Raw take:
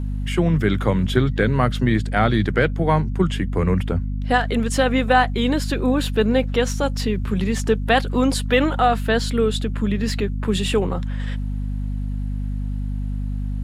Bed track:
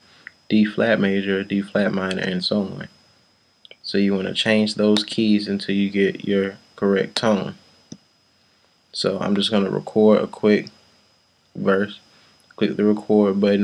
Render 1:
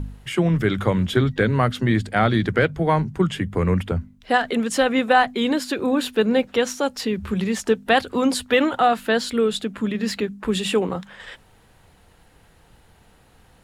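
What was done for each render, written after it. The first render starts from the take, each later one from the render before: de-hum 50 Hz, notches 5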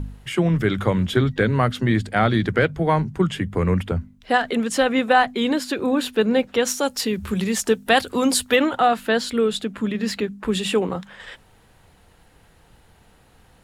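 6.65–8.56 high shelf 5600 Hz +11 dB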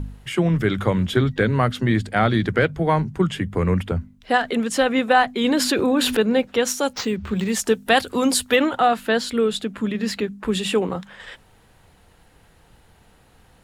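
5.44–6.17 fast leveller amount 70%; 6.93–7.5 decimation joined by straight lines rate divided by 4×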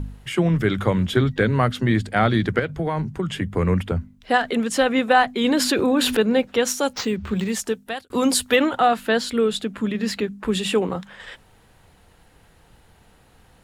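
2.59–3.42 compressor 10:1, threshold -19 dBFS; 7.36–8.1 fade out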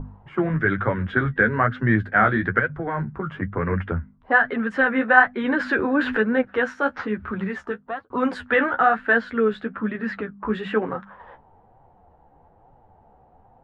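flange 1.1 Hz, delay 6.9 ms, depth 8.3 ms, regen +27%; envelope low-pass 780–1600 Hz up, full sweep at -24.5 dBFS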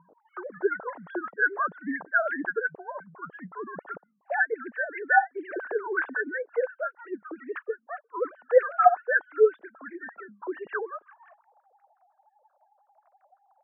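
sine-wave speech; wah 5.7 Hz 440–1600 Hz, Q 2.7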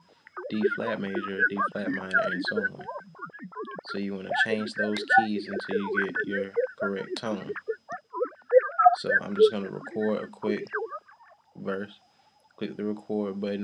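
add bed track -13.5 dB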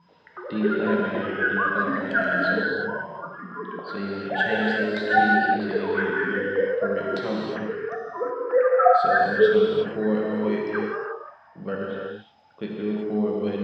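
air absorption 160 m; non-linear reverb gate 0.39 s flat, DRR -3.5 dB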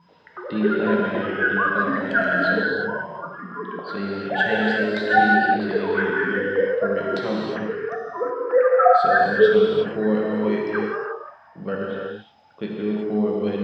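gain +2.5 dB; limiter -3 dBFS, peak gain reduction 1.5 dB

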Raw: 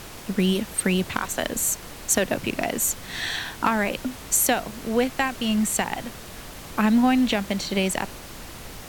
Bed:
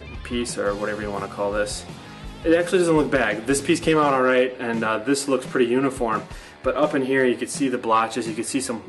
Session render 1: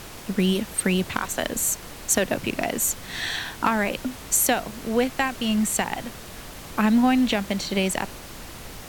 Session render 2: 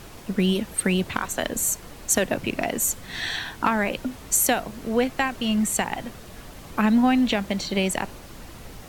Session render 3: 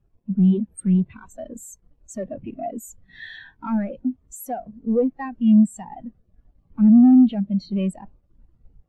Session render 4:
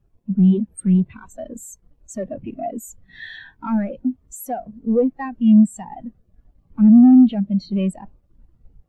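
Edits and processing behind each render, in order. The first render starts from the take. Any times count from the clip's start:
nothing audible
denoiser 6 dB, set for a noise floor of -40 dBFS
sample leveller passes 5; spectral expander 2.5:1
gain +2.5 dB

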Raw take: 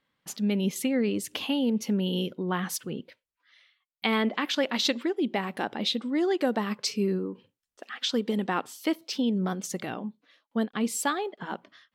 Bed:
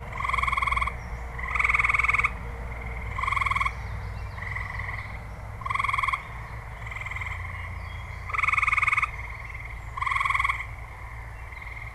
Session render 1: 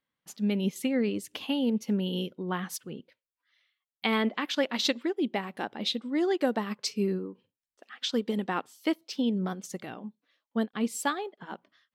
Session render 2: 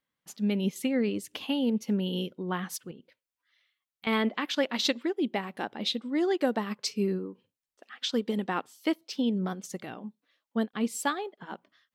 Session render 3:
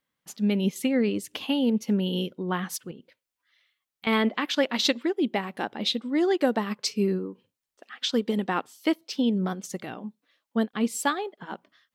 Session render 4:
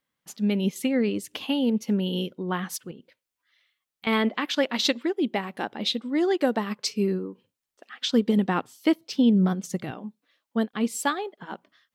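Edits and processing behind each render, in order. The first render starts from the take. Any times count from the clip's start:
upward expander 1.5:1, over -43 dBFS
2.91–4.07 compressor 3:1, threshold -47 dBFS
gain +3.5 dB
8.05–9.91 bell 86 Hz +14 dB 2.2 oct

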